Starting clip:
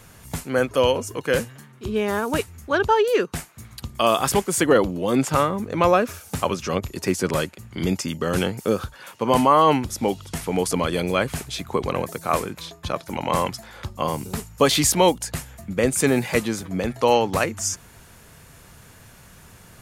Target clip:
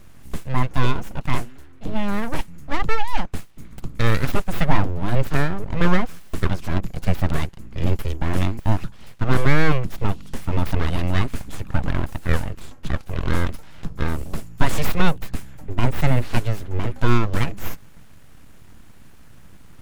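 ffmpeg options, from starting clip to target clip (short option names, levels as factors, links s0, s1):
-af "aeval=exprs='abs(val(0))':c=same,bass=f=250:g=11,treble=f=4000:g=-5,volume=0.75"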